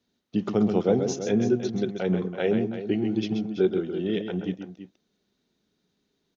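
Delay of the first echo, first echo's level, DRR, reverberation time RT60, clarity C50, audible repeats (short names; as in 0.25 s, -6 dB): 0.131 s, -7.5 dB, none, none, none, 2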